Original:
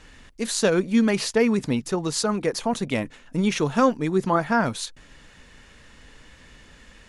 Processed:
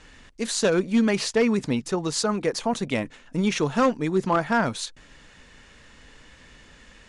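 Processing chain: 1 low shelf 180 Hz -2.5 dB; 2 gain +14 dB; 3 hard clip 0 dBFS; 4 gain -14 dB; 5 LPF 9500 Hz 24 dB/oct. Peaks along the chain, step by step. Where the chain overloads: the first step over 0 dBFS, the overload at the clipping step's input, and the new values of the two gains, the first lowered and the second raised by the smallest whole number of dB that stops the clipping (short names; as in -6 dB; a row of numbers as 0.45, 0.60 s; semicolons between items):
-7.0, +7.0, 0.0, -14.0, -12.0 dBFS; step 2, 7.0 dB; step 2 +7 dB, step 4 -7 dB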